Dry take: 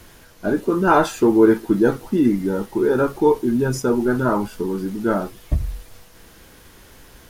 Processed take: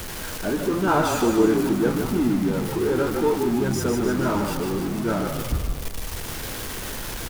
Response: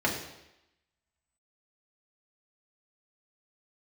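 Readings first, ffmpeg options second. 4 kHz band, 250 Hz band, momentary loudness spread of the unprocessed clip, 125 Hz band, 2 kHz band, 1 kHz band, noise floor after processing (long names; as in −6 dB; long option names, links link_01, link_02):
+6.0 dB, −3.5 dB, 10 LU, −0.5 dB, −2.0 dB, −3.5 dB, −32 dBFS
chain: -filter_complex "[0:a]aeval=exprs='val(0)+0.5*0.0944*sgn(val(0))':channel_layout=same,asplit=2[link_01][link_02];[link_02]asplit=8[link_03][link_04][link_05][link_06][link_07][link_08][link_09][link_10];[link_03]adelay=151,afreqshift=-38,volume=-5dB[link_11];[link_04]adelay=302,afreqshift=-76,volume=-9.6dB[link_12];[link_05]adelay=453,afreqshift=-114,volume=-14.2dB[link_13];[link_06]adelay=604,afreqshift=-152,volume=-18.7dB[link_14];[link_07]adelay=755,afreqshift=-190,volume=-23.3dB[link_15];[link_08]adelay=906,afreqshift=-228,volume=-27.9dB[link_16];[link_09]adelay=1057,afreqshift=-266,volume=-32.5dB[link_17];[link_10]adelay=1208,afreqshift=-304,volume=-37.1dB[link_18];[link_11][link_12][link_13][link_14][link_15][link_16][link_17][link_18]amix=inputs=8:normalize=0[link_19];[link_01][link_19]amix=inputs=2:normalize=0,volume=-7.5dB"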